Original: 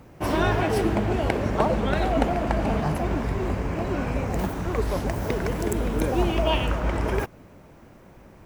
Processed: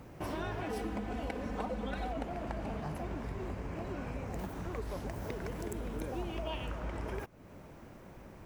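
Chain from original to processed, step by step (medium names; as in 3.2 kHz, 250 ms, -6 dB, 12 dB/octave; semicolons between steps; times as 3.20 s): 0.66–2.13 s: comb 4 ms, depth 84%; compression 2.5:1, threshold -39 dBFS, peak gain reduction 15.5 dB; trim -2.5 dB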